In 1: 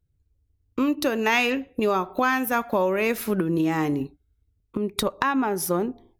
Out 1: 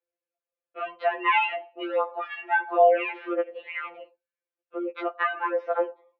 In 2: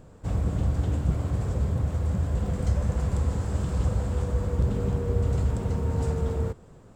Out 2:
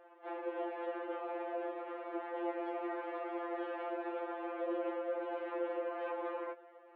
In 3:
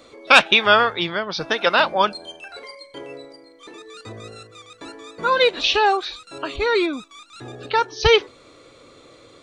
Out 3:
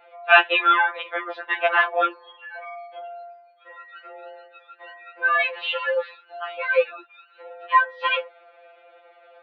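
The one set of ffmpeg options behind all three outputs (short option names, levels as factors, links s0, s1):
-af "highpass=f=270:t=q:w=0.5412,highpass=f=270:t=q:w=1.307,lowpass=f=2700:t=q:w=0.5176,lowpass=f=2700:t=q:w=0.7071,lowpass=f=2700:t=q:w=1.932,afreqshift=140,afftfilt=real='re*2.83*eq(mod(b,8),0)':imag='im*2.83*eq(mod(b,8),0)':win_size=2048:overlap=0.75,volume=1.12"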